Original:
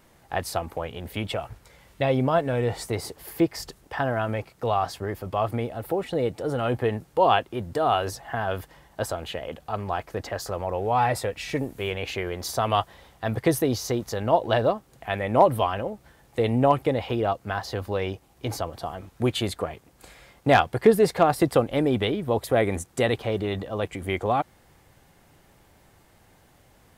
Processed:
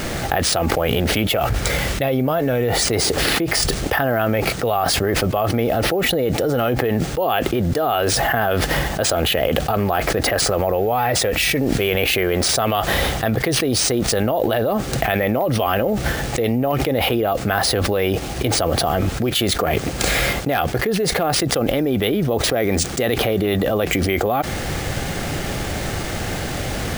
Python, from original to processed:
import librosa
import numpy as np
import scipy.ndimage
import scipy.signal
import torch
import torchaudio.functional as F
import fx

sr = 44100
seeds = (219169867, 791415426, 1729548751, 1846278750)

y = fx.dynamic_eq(x, sr, hz=100.0, q=1.6, threshold_db=-42.0, ratio=4.0, max_db=-5)
y = np.repeat(y[::3], 3)[:len(y)]
y = fx.peak_eq(y, sr, hz=970.0, db=-9.5, octaves=0.3)
y = fx.env_flatten(y, sr, amount_pct=100)
y = y * librosa.db_to_amplitude(-7.0)